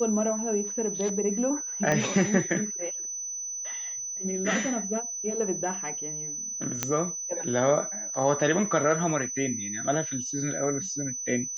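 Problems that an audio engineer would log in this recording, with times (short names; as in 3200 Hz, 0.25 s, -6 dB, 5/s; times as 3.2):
tone 6000 Hz -32 dBFS
1.92 pop -13 dBFS
6.83 pop -9 dBFS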